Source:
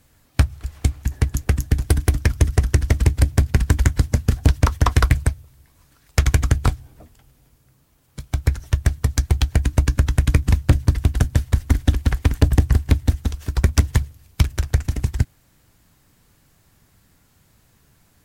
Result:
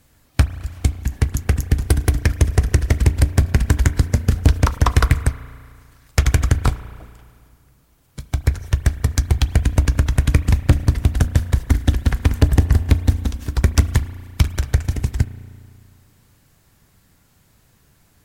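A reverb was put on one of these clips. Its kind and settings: spring tank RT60 2.1 s, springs 34 ms, chirp 50 ms, DRR 13.5 dB; trim +1 dB

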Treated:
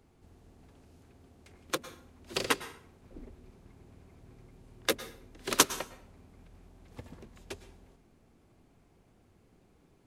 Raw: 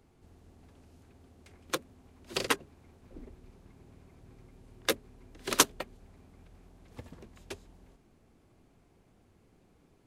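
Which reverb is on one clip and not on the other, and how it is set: plate-style reverb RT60 0.55 s, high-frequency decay 0.8×, pre-delay 95 ms, DRR 13.5 dB

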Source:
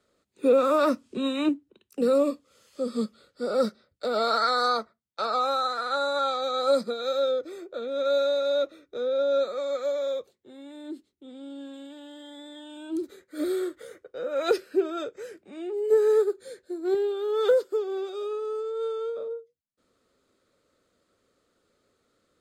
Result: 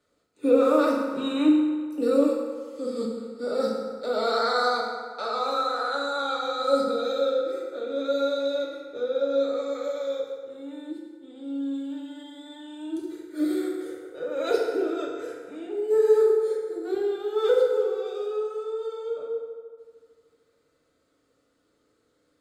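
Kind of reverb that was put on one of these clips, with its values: FDN reverb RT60 1.8 s, low-frequency decay 0.8×, high-frequency decay 0.6×, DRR -3 dB; trim -4.5 dB

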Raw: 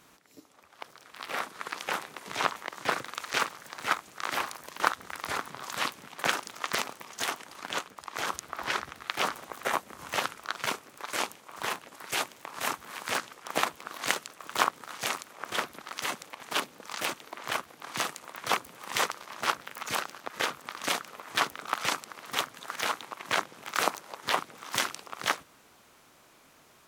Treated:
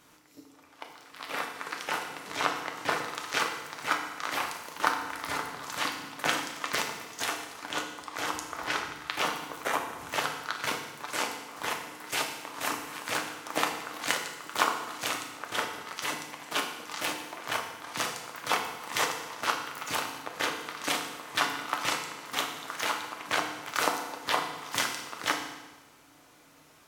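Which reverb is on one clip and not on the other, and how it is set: FDN reverb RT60 1.1 s, low-frequency decay 1.25×, high-frequency decay 0.95×, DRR 2 dB; trim -1.5 dB

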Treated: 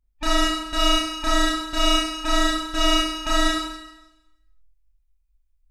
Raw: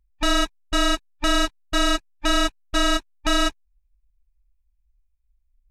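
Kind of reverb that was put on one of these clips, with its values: Schroeder reverb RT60 0.97 s, combs from 25 ms, DRR -6 dB; trim -6 dB

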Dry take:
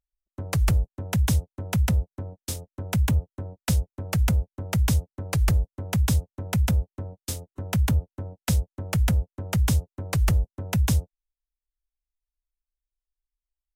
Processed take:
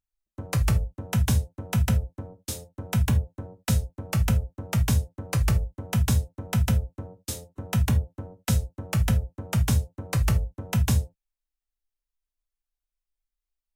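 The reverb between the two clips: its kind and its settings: gated-style reverb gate 100 ms falling, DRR 6 dB; trim -1.5 dB

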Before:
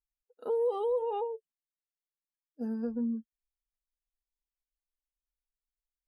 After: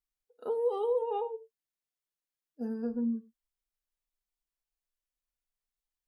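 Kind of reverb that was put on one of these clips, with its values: gated-style reverb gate 130 ms falling, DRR 10.5 dB

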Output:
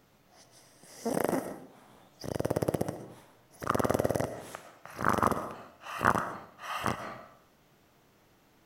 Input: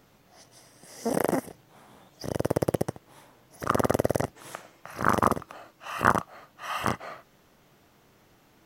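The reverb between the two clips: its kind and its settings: algorithmic reverb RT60 0.63 s, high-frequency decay 0.5×, pre-delay 80 ms, DRR 10 dB; trim -4 dB

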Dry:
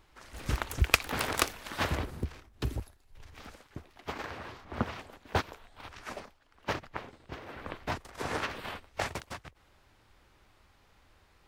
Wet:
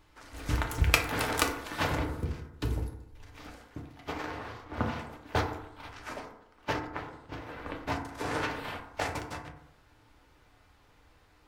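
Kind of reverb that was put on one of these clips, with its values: FDN reverb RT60 0.83 s, low-frequency decay 1×, high-frequency decay 0.35×, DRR 1 dB; trim -1 dB

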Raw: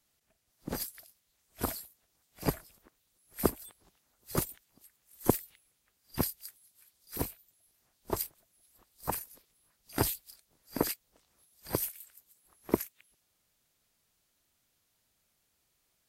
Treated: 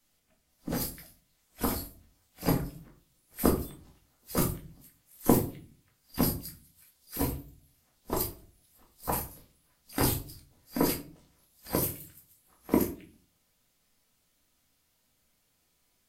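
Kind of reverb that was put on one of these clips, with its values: simulated room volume 270 m³, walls furnished, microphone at 2 m

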